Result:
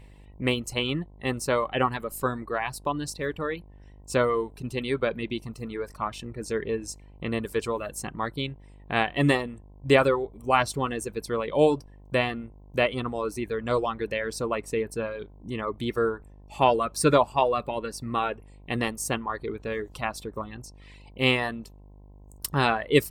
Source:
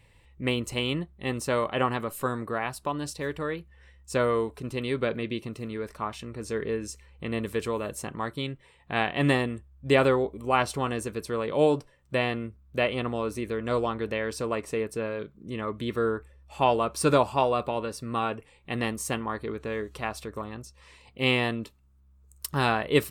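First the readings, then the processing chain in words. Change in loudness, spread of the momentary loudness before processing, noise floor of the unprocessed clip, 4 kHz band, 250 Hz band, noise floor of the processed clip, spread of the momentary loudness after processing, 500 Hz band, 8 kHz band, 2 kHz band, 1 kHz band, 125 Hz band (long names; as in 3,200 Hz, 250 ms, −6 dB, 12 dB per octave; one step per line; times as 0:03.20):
+1.5 dB, 12 LU, −59 dBFS, +1.5 dB, +0.5 dB, −50 dBFS, 14 LU, +1.0 dB, +2.5 dB, +1.5 dB, +1.5 dB, +0.5 dB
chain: reverb reduction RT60 1.3 s
hum with harmonics 50 Hz, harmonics 21, −52 dBFS −7 dB per octave
level +2.5 dB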